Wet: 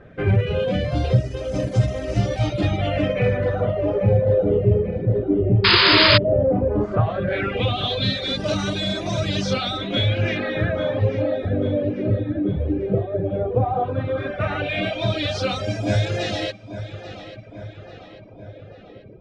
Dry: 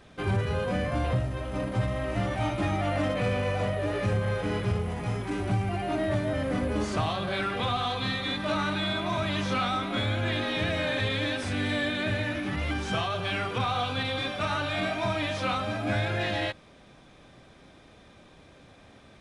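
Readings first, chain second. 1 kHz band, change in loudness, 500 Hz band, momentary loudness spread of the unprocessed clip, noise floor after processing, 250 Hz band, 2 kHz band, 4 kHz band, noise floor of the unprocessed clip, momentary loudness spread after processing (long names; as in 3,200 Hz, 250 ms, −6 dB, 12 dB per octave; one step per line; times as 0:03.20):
+3.0 dB, +8.0 dB, +9.5 dB, 2 LU, −43 dBFS, +6.5 dB, +5.5 dB, +10.0 dB, −54 dBFS, 8 LU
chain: auto-filter low-pass sine 0.14 Hz 380–5,900 Hz
octave-band graphic EQ 125/250/500/1,000/2,000/4,000/8,000 Hz +5/−3/+7/−12/−4/−3/+5 dB
on a send: feedback echo with a low-pass in the loop 841 ms, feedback 59%, low-pass 4,000 Hz, level −12.5 dB
on the sum: reverb reduction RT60 0.87 s
sound drawn into the spectrogram noise, 0:05.64–0:06.18, 880–5,100 Hz −22 dBFS
level +7 dB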